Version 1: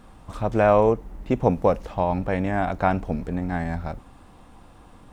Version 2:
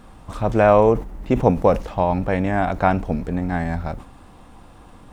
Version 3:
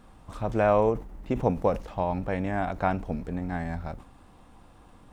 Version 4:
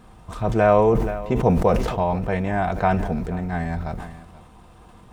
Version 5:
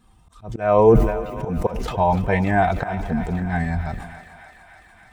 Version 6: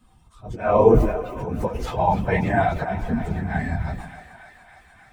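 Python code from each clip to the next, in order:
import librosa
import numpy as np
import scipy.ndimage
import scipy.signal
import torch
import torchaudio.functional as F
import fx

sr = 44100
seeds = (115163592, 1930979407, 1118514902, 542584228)

y1 = fx.sustainer(x, sr, db_per_s=150.0)
y1 = y1 * 10.0 ** (3.5 / 20.0)
y2 = fx.end_taper(y1, sr, db_per_s=150.0)
y2 = y2 * 10.0 ** (-8.0 / 20.0)
y3 = fx.notch_comb(y2, sr, f0_hz=280.0)
y3 = y3 + 10.0 ** (-18.5 / 20.0) * np.pad(y3, (int(479 * sr / 1000.0), 0))[:len(y3)]
y3 = fx.sustainer(y3, sr, db_per_s=45.0)
y3 = y3 * 10.0 ** (6.5 / 20.0)
y4 = fx.bin_expand(y3, sr, power=1.5)
y4 = fx.auto_swell(y4, sr, attack_ms=412.0)
y4 = fx.echo_thinned(y4, sr, ms=294, feedback_pct=80, hz=570.0, wet_db=-12.0)
y4 = y4 * 10.0 ** (8.5 / 20.0)
y5 = fx.phase_scramble(y4, sr, seeds[0], window_ms=50)
y5 = y5 * 10.0 ** (-1.5 / 20.0)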